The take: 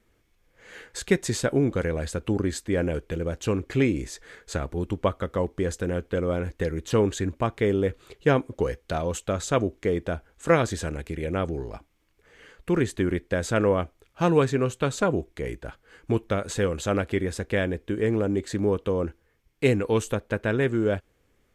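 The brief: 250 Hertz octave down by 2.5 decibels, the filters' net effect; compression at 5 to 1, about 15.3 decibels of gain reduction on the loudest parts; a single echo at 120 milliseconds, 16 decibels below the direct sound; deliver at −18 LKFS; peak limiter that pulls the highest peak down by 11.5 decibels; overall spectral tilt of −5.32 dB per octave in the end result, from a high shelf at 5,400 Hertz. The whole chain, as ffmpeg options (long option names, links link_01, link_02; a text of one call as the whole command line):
ffmpeg -i in.wav -af "equalizer=frequency=250:width_type=o:gain=-3.5,highshelf=frequency=5400:gain=-9,acompressor=threshold=-34dB:ratio=5,alimiter=level_in=8dB:limit=-24dB:level=0:latency=1,volume=-8dB,aecho=1:1:120:0.158,volume=24.5dB" out.wav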